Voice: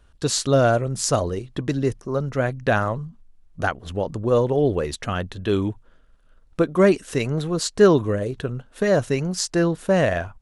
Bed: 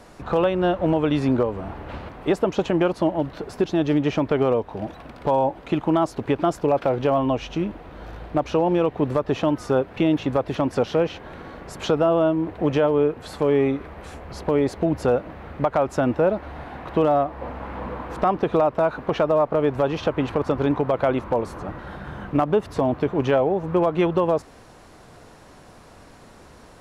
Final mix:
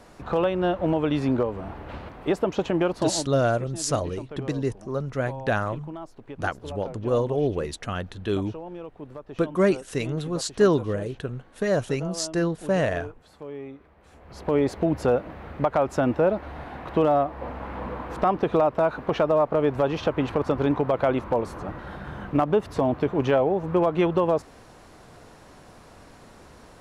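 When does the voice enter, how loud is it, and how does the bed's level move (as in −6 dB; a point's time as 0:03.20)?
2.80 s, −4.5 dB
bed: 0:03.10 −3 dB
0:03.40 −18 dB
0:14.00 −18 dB
0:14.54 −1.5 dB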